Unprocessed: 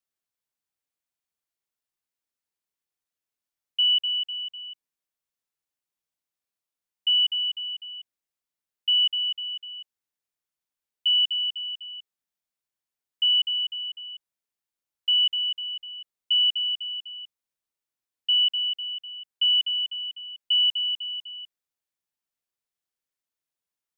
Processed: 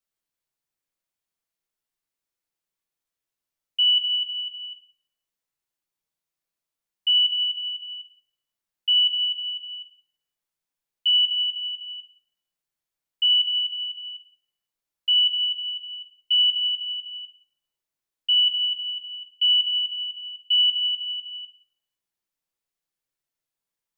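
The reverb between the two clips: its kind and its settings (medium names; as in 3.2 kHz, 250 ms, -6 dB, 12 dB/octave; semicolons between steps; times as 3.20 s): simulated room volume 130 m³, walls mixed, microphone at 0.66 m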